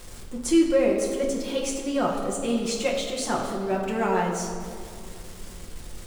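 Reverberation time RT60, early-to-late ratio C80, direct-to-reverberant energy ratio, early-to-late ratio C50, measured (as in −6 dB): 2.2 s, 5.0 dB, −2.0 dB, 3.5 dB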